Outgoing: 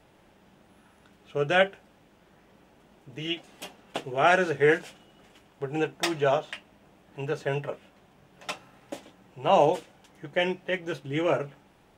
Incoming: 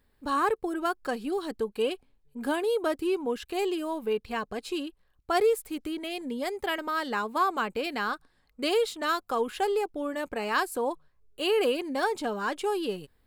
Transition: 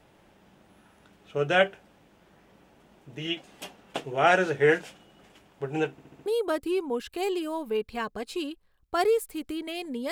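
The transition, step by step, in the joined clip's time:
outgoing
5.91 s: stutter in place 0.07 s, 5 plays
6.26 s: go over to incoming from 2.62 s

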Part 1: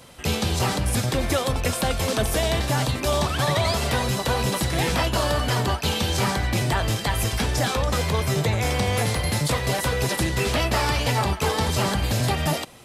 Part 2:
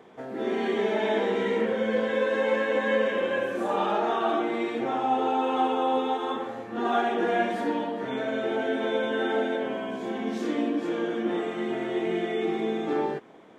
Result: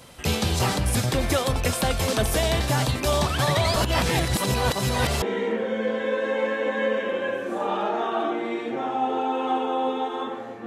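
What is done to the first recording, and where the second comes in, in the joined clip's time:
part 1
3.76–5.22 s: reverse
5.22 s: go over to part 2 from 1.31 s

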